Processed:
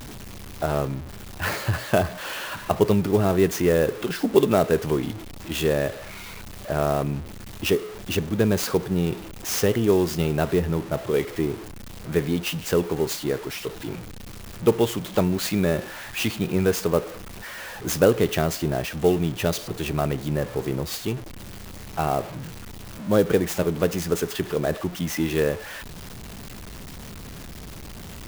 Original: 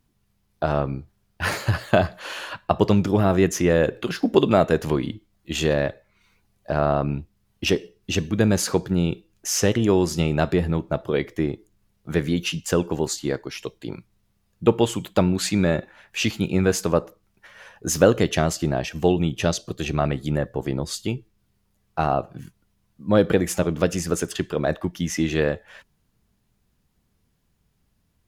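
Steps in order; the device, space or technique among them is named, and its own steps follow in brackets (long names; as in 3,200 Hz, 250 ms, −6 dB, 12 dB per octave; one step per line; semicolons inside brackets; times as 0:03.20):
dynamic equaliser 420 Hz, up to +6 dB, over −37 dBFS, Q 5.4
early CD player with a faulty converter (converter with a step at zero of −28.5 dBFS; converter with an unsteady clock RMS 0.025 ms)
level −3.5 dB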